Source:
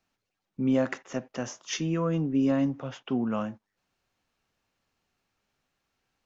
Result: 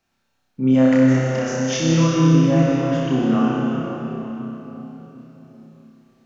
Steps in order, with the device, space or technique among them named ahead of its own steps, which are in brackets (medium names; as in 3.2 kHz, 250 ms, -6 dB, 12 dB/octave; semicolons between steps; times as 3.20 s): tunnel (flutter echo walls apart 5.3 m, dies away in 0.74 s; reverberation RT60 4.0 s, pre-delay 75 ms, DRR -2 dB); trim +3.5 dB